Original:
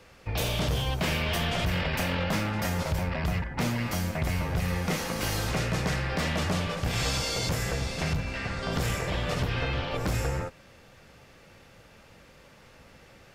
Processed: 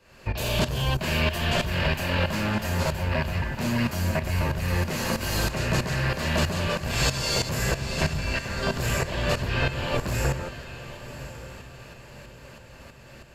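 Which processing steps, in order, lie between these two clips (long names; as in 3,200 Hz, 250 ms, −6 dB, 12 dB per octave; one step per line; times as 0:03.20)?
shaped tremolo saw up 3.1 Hz, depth 85%
in parallel at −9 dB: gain into a clipping stage and back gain 29 dB
on the sum: EQ curve with evenly spaced ripples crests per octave 1.4, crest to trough 6 dB
feedback delay with all-pass diffusion 1,076 ms, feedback 44%, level −13.5 dB
level +4.5 dB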